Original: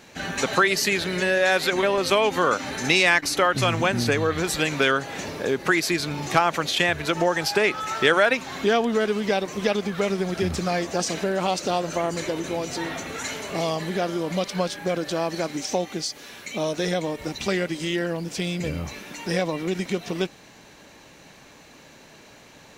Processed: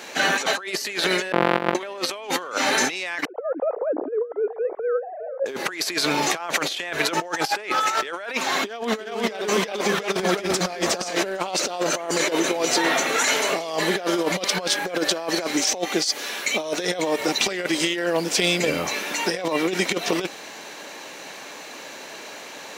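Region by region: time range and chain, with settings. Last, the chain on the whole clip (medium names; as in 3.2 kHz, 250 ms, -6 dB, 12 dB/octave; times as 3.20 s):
1.32–1.75 s: sorted samples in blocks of 256 samples + AM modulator 46 Hz, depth 100% + distance through air 490 m
3.25–5.46 s: formants replaced by sine waves + four-pole ladder low-pass 790 Hz, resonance 30% + delay 403 ms -22 dB
8.52–11.24 s: delay 358 ms -3.5 dB + hard clipper -8.5 dBFS
whole clip: high-pass 380 Hz 12 dB/octave; peak limiter -14.5 dBFS; compressor with a negative ratio -31 dBFS, ratio -0.5; trim +8 dB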